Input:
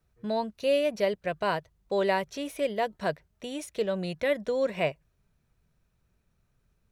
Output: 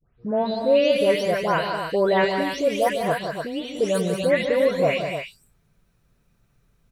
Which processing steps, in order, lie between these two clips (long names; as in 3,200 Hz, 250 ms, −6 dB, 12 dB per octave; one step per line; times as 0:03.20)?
every frequency bin delayed by itself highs late, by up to 324 ms
loudspeakers that aren't time-aligned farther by 50 metres −11 dB, 64 metres −8 dB, 100 metres −8 dB
level +7 dB